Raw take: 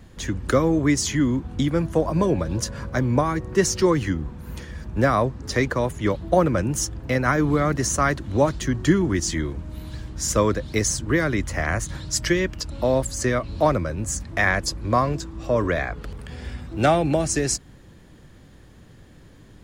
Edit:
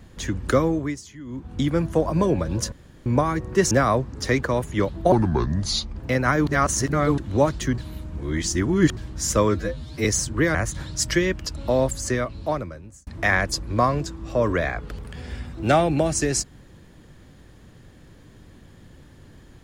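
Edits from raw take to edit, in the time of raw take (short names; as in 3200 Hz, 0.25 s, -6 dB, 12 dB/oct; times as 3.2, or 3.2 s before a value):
0.59–1.67 dip -19 dB, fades 0.43 s
2.72–3.06 room tone
3.71–4.98 cut
6.39–6.96 speed 68%
7.47–8.18 reverse
8.78–9.97 reverse
10.49–10.77 stretch 2×
11.27–11.69 cut
13.08–14.21 fade out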